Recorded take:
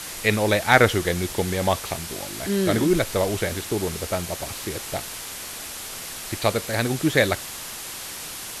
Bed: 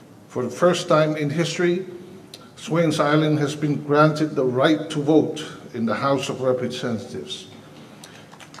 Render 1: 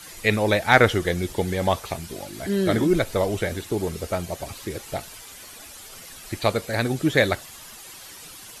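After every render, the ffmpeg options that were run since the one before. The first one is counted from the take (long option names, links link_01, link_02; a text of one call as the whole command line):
ffmpeg -i in.wav -af "afftdn=noise_reduction=11:noise_floor=-35" out.wav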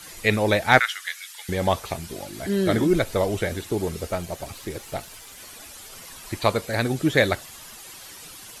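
ffmpeg -i in.wav -filter_complex "[0:a]asettb=1/sr,asplit=3[link_01][link_02][link_03];[link_01]atrim=end=0.794[link_04];[link_02]atrim=start=0.79:end=1.49,asetpts=PTS-STARTPTS,afade=type=in:duration=0.004:curve=qsin,afade=type=out:start_time=0.696:duration=0.004:curve=qsin,highpass=frequency=1400:width=0.5412,highpass=frequency=1400:width=1.3066[link_05];[link_03]atrim=start=1.486[link_06];[link_04][link_05]acrossfade=duration=0.004:curve1=hsin:curve2=qsin[link_07];[link_07][link_06]acrossfade=duration=0.004:curve1=qsin:curve2=hsin,asettb=1/sr,asplit=3[link_08][link_09][link_10];[link_08]atrim=end=4.084[link_11];[link_09]atrim=start=4.08:end=5.38,asetpts=PTS-STARTPTS,afade=type=in:duration=0.004:curve=qsin,afade=type=out:start_time=1.296:duration=0.004:curve=qsin,aeval=exprs='if(lt(val(0),0),0.708*val(0),val(0))':channel_layout=same[link_12];[link_10]atrim=start=5.376[link_13];[link_11][link_12]acrossfade=duration=0.004:curve1=hsin:curve2=qsin[link_14];[link_14][link_13]acrossfade=duration=0.004:curve1=qsin:curve2=hsin,asettb=1/sr,asplit=3[link_15][link_16][link_17];[link_15]atrim=end=5.994[link_18];[link_16]atrim=start=5.99:end=6.61,asetpts=PTS-STARTPTS,afade=type=in:duration=0.004:curve=qsin,afade=type=out:start_time=0.616:duration=0.004:curve=qsin,equalizer=frequency=1000:width_type=o:width=0.25:gain=8[link_19];[link_17]atrim=start=6.606[link_20];[link_18][link_19]acrossfade=duration=0.004:curve1=hsin:curve2=qsin[link_21];[link_21][link_20]acrossfade=duration=0.004:curve1=qsin:curve2=hsin" out.wav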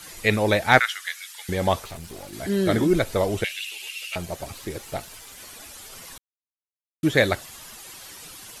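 ffmpeg -i in.wav -filter_complex "[0:a]asettb=1/sr,asplit=3[link_01][link_02][link_03];[link_01]atrim=end=1.844[link_04];[link_02]atrim=start=1.84:end=2.33,asetpts=PTS-STARTPTS,afade=type=in:duration=0.004:curve=qsin,afade=type=out:start_time=0.486:duration=0.004:curve=qsin,aeval=exprs='(tanh(44.7*val(0)+0.5)-tanh(0.5))/44.7':channel_layout=same[link_05];[link_03]atrim=start=2.326[link_06];[link_04][link_05]acrossfade=duration=0.004:curve1=hsin:curve2=qsin[link_07];[link_07][link_06]acrossfade=duration=0.004:curve1=qsin:curve2=hsin,asettb=1/sr,asplit=3[link_08][link_09][link_10];[link_08]atrim=end=3.444[link_11];[link_09]atrim=start=3.44:end=4.16,asetpts=PTS-STARTPTS,afade=type=in:duration=0.004:curve=qsin,afade=type=out:start_time=0.716:duration=0.004:curve=qsin,highpass=frequency=2700:width_type=q:width=11[link_12];[link_10]atrim=start=4.156[link_13];[link_11][link_12]acrossfade=duration=0.004:curve1=hsin:curve2=qsin[link_14];[link_14][link_13]acrossfade=duration=0.004:curve1=qsin:curve2=hsin,asplit=3[link_15][link_16][link_17];[link_15]atrim=end=6.18,asetpts=PTS-STARTPTS,afade=type=out:start_time=6.176:duration=0.004:curve=hsin[link_18];[link_16]atrim=start=6.18:end=7.03,asetpts=PTS-STARTPTS,volume=0[link_19];[link_17]atrim=start=7.03,asetpts=PTS-STARTPTS,afade=type=in:duration=0.004:curve=hsin[link_20];[link_18][link_19][link_20]concat=n=3:v=0:a=1" out.wav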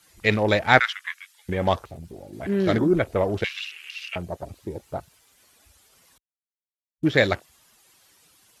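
ffmpeg -i in.wav -af "highpass=42,afwtdn=0.0158" out.wav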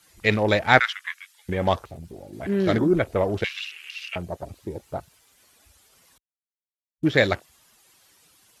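ffmpeg -i in.wav -af anull out.wav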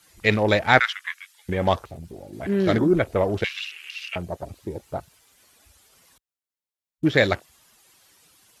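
ffmpeg -i in.wav -af "volume=1dB,alimiter=limit=-2dB:level=0:latency=1" out.wav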